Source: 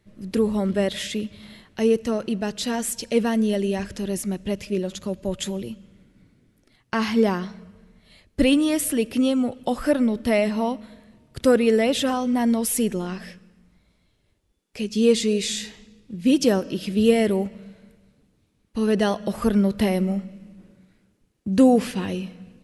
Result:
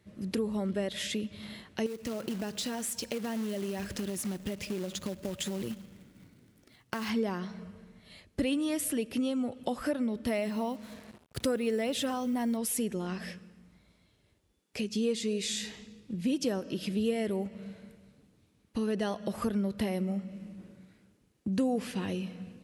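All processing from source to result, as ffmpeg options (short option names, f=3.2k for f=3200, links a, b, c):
-filter_complex "[0:a]asettb=1/sr,asplit=3[a][b][c];[a]atrim=end=1.864[d];[b]atrim=start=1.86:end=7.1,asetpts=PTS-STARTPTS,afade=t=in:d=0.004:c=qsin,afade=t=out:st=5.236:d=0.004:c=qsin,acrusher=bits=3:mode=log:mix=0:aa=0.000001,acompressor=threshold=-26dB:ratio=6:attack=3.2:release=140:knee=1:detection=peak[e];[c]atrim=start=7.096[f];[d][e]acrossfade=d=0.004:c1=hsin:c2=qsin[g];[g][f]acrossfade=d=0.004:c1=qsin:c2=hsin,asettb=1/sr,asplit=3[h][i][j];[h]atrim=end=10.274[k];[i]atrim=start=10.27:end=12.57,asetpts=PTS-STARTPTS,afade=t=in:d=0.004:c=qsin,afade=t=out:st=2.296:d=0.004:c=qsin,acrusher=bits=7:mix=0:aa=0.5,highshelf=f=10k:g=5.5[l];[j]atrim=start=12.566[m];[k][l]acrossfade=d=0.004:c1=hsin:c2=qsin[n];[n][m]acrossfade=d=0.004:c1=qsin:c2=hsin,highpass=61,acompressor=threshold=-33dB:ratio=2.5"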